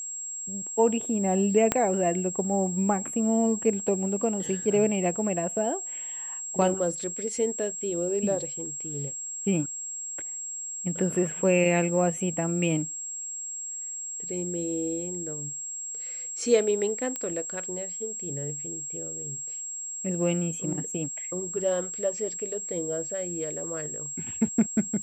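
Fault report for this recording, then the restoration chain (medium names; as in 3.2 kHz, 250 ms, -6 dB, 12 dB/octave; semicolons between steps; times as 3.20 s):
whine 7.6 kHz -33 dBFS
1.72 s: pop -7 dBFS
17.16 s: pop -16 dBFS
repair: de-click; band-stop 7.6 kHz, Q 30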